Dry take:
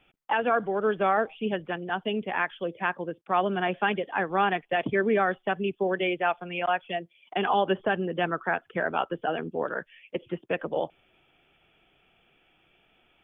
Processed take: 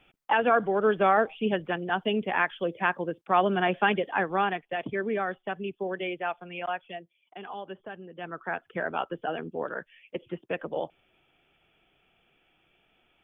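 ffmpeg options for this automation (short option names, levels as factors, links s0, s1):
-af "volume=5.01,afade=t=out:st=4.07:d=0.56:silence=0.421697,afade=t=out:st=6.68:d=0.69:silence=0.334965,afade=t=in:st=8.15:d=0.5:silence=0.251189"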